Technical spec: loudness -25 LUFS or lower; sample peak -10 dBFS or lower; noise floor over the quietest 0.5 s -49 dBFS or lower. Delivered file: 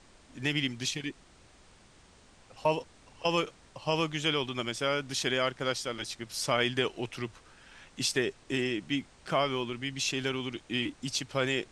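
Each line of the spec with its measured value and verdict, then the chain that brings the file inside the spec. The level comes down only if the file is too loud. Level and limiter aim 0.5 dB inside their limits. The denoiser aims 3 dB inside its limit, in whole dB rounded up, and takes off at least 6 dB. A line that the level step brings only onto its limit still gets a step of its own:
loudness -31.5 LUFS: pass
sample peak -13.0 dBFS: pass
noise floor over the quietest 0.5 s -58 dBFS: pass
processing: none needed

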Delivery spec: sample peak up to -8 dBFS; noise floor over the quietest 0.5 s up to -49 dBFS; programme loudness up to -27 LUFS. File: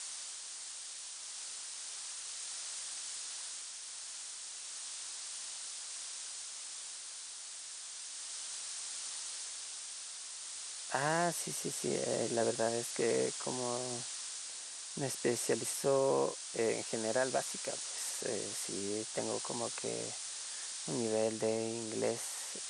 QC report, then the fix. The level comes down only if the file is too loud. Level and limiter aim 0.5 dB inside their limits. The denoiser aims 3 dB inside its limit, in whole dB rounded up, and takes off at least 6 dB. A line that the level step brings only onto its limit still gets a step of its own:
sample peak -18.0 dBFS: pass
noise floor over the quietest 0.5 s -47 dBFS: fail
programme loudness -37.5 LUFS: pass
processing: noise reduction 6 dB, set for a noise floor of -47 dBFS

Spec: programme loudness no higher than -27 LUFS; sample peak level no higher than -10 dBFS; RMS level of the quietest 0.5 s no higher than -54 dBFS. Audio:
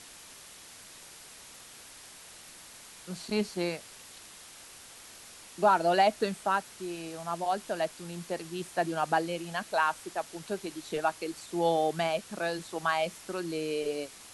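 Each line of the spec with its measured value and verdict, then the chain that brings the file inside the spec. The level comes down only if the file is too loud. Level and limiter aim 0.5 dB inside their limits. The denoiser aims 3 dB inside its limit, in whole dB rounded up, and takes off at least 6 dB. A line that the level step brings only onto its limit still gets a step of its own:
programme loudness -31.0 LUFS: pass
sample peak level -12.5 dBFS: pass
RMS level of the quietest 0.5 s -50 dBFS: fail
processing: noise reduction 7 dB, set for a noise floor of -50 dBFS

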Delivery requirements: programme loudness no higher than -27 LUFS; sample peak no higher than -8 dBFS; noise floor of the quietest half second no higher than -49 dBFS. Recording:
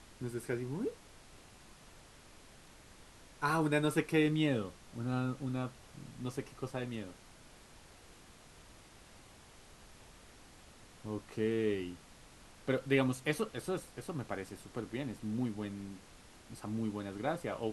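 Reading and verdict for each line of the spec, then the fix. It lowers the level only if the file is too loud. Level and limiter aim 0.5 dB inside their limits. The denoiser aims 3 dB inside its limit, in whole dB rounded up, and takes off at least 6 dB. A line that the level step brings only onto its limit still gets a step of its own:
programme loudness -36.5 LUFS: pass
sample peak -15.5 dBFS: pass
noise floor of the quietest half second -57 dBFS: pass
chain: none needed

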